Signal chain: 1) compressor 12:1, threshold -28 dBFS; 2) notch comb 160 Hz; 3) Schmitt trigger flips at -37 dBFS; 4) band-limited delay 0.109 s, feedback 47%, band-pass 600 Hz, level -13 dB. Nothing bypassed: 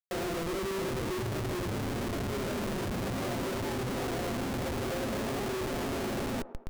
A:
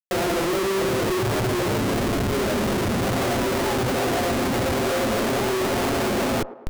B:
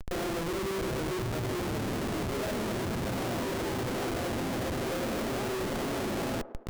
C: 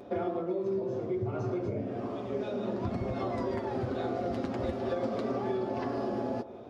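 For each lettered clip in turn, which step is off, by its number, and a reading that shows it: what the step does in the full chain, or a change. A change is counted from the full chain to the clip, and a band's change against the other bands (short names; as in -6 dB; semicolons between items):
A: 1, mean gain reduction 8.5 dB; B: 2, loudness change +1.0 LU; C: 3, crest factor change +7.0 dB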